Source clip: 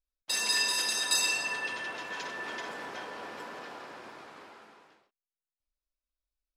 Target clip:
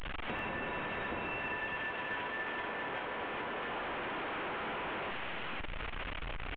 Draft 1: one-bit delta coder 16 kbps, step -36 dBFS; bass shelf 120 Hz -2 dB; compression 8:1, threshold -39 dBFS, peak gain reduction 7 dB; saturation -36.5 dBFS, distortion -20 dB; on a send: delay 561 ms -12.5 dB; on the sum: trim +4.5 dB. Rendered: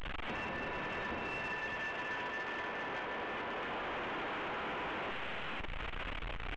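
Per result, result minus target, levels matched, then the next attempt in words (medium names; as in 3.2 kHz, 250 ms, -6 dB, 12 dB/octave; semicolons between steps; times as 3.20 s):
saturation: distortion +19 dB; echo 171 ms late
one-bit delta coder 16 kbps, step -36 dBFS; bass shelf 120 Hz -2 dB; compression 8:1, threshold -39 dBFS, peak gain reduction 7 dB; saturation -25.5 dBFS, distortion -39 dB; on a send: delay 561 ms -12.5 dB; on the sum: trim +4.5 dB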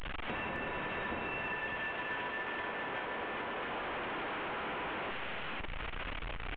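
echo 171 ms late
one-bit delta coder 16 kbps, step -36 dBFS; bass shelf 120 Hz -2 dB; compression 8:1, threshold -39 dBFS, peak gain reduction 7 dB; saturation -25.5 dBFS, distortion -39 dB; on a send: delay 390 ms -12.5 dB; on the sum: trim +4.5 dB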